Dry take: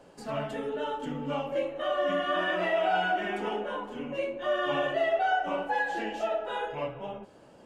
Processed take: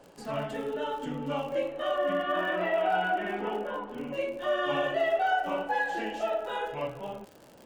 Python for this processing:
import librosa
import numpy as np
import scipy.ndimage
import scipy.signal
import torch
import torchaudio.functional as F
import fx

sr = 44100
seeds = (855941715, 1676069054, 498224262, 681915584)

y = fx.bessel_lowpass(x, sr, hz=2500.0, order=2, at=(1.96, 4.05))
y = fx.dmg_crackle(y, sr, seeds[0], per_s=79.0, level_db=-40.0)